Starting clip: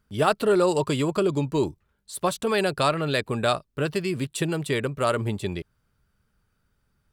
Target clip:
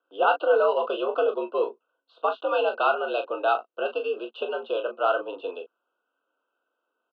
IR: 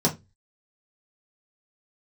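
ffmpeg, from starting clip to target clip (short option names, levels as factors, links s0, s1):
-af "highpass=f=320:t=q:w=0.5412,highpass=f=320:t=q:w=1.307,lowpass=f=2900:t=q:w=0.5176,lowpass=f=2900:t=q:w=0.7071,lowpass=f=2900:t=q:w=1.932,afreqshift=83,asuperstop=centerf=2000:order=20:qfactor=2,aecho=1:1:22|39:0.376|0.355"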